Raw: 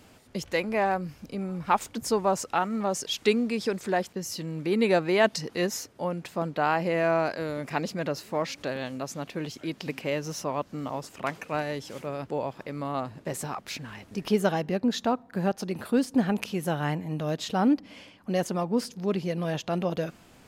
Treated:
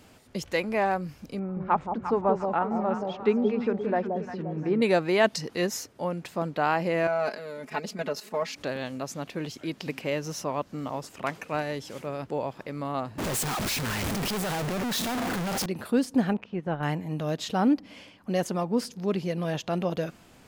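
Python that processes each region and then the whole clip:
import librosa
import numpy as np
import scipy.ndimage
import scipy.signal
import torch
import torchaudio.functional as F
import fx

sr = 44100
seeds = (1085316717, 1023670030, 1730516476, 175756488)

y = fx.chain(x, sr, fx.lowpass(hz=1500.0, slope=12),
    fx.echo_alternate(ms=175, hz=820.0, feedback_pct=63, wet_db=-4.0), at=(1.39, 4.82))
y = fx.chain(y, sr, fx.highpass(hz=190.0, slope=12),
    fx.level_steps(step_db=10),
    fx.comb(ms=4.7, depth=0.85), at=(7.07, 8.56))
y = fx.chain(y, sr, fx.clip_1bit(),
    fx.band_widen(depth_pct=70), at=(13.18, 15.66))
y = fx.chain(y, sr, fx.lowpass(hz=2000.0, slope=12),
    fx.transient(attack_db=-3, sustain_db=-8), at=(16.33, 16.83))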